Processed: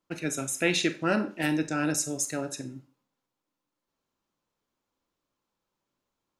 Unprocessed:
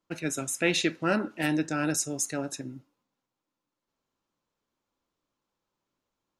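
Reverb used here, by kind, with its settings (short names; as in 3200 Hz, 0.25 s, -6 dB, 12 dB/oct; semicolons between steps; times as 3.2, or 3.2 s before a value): Schroeder reverb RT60 0.34 s, combs from 30 ms, DRR 11.5 dB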